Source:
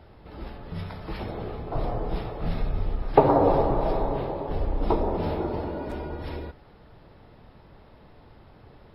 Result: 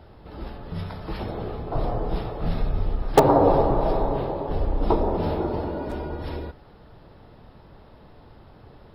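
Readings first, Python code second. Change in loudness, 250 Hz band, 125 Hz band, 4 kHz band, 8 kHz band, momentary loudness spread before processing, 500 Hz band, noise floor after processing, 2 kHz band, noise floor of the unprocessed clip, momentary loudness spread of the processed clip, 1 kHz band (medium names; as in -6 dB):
+2.5 dB, +2.5 dB, +2.5 dB, +4.5 dB, no reading, 17 LU, +2.5 dB, -50 dBFS, +2.5 dB, -52 dBFS, 17 LU, +2.0 dB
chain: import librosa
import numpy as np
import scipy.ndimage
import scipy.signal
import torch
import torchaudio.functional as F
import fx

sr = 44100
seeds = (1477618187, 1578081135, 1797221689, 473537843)

p1 = (np.mod(10.0 ** (6.5 / 20.0) * x + 1.0, 2.0) - 1.0) / 10.0 ** (6.5 / 20.0)
p2 = x + (p1 * 10.0 ** (-9.0 / 20.0))
y = fx.peak_eq(p2, sr, hz=2200.0, db=-4.0, octaves=0.55)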